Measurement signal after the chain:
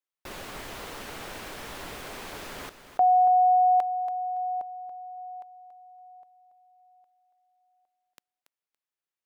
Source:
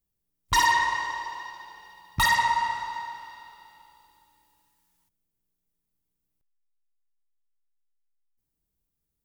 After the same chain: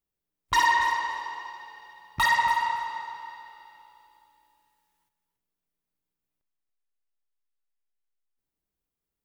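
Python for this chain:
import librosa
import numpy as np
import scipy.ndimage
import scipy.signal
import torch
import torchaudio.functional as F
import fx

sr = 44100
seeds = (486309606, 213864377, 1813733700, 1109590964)

p1 = fx.bass_treble(x, sr, bass_db=-9, treble_db=-7)
y = p1 + fx.echo_feedback(p1, sr, ms=282, feedback_pct=17, wet_db=-11, dry=0)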